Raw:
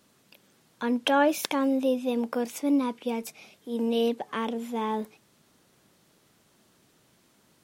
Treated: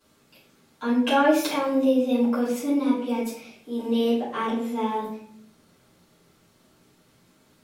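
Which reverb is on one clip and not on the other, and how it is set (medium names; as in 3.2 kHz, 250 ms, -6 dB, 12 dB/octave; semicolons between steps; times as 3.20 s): simulated room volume 89 m³, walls mixed, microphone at 3 m; trim -9.5 dB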